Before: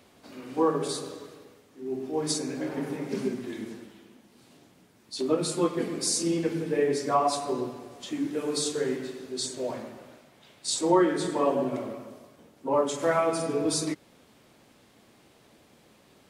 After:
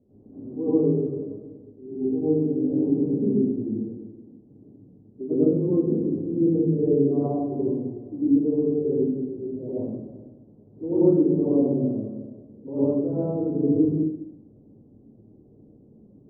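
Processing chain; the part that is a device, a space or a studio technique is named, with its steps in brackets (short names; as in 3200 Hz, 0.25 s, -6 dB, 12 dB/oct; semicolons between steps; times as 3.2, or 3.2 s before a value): next room (LPF 420 Hz 24 dB/oct; reverb RT60 0.55 s, pre-delay 89 ms, DRR -11 dB); gain -2.5 dB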